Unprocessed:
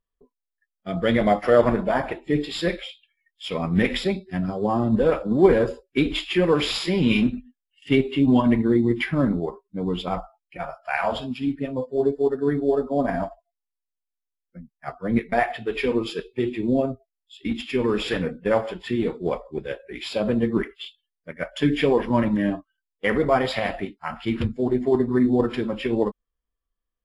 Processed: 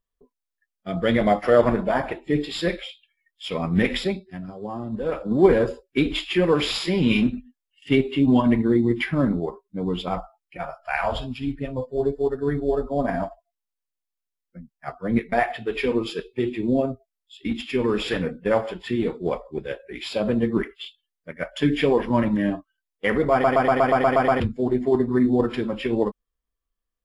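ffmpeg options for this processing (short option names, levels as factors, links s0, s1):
-filter_complex "[0:a]asplit=3[s0][s1][s2];[s0]afade=t=out:st=10.78:d=0.02[s3];[s1]asubboost=boost=5.5:cutoff=86,afade=t=in:st=10.78:d=0.02,afade=t=out:st=13.02:d=0.02[s4];[s2]afade=t=in:st=13.02:d=0.02[s5];[s3][s4][s5]amix=inputs=3:normalize=0,asplit=12[s6][s7][s8][s9][s10][s11][s12][s13][s14][s15][s16][s17];[s6]atrim=end=4.39,asetpts=PTS-STARTPTS,afade=t=out:st=4.02:d=0.37:silence=0.334965[s18];[s7]atrim=start=4.39:end=5,asetpts=PTS-STARTPTS,volume=0.335[s19];[s8]atrim=start=5:end=23.442,asetpts=PTS-STARTPTS,afade=t=in:d=0.37:silence=0.334965[s20];[s9]atrim=start=23.318:end=23.442[s21];[s10]atrim=start=23.318:end=23.442[s22];[s11]atrim=start=23.318:end=23.442[s23];[s12]atrim=start=23.318:end=23.442[s24];[s13]atrim=start=23.318:end=23.442[s25];[s14]atrim=start=23.318:end=23.442[s26];[s15]atrim=start=23.318:end=23.442[s27];[s16]atrim=start=23.318:end=23.442[s28];[s17]atrim=start=24.398[s29];[s18][s19][s20]concat=n=3:v=0:a=1[s30];[s30][s21]acrossfade=d=0.004:c1=hsin:c2=hsin[s31];[s31][s22]acrossfade=d=0.004:c1=hsin:c2=hsin[s32];[s32][s23]acrossfade=d=0.004:c1=hsin:c2=hsin[s33];[s33][s24]acrossfade=d=0.004:c1=hsin:c2=hsin[s34];[s34][s25]acrossfade=d=0.004:c1=hsin:c2=hsin[s35];[s35][s26]acrossfade=d=0.004:c1=hsin:c2=hsin[s36];[s36][s27]acrossfade=d=0.004:c1=hsin:c2=hsin[s37];[s37][s28]acrossfade=d=0.004:c1=hsin:c2=hsin[s38];[s38][s29]acrossfade=d=0.004:c1=hsin:c2=hsin"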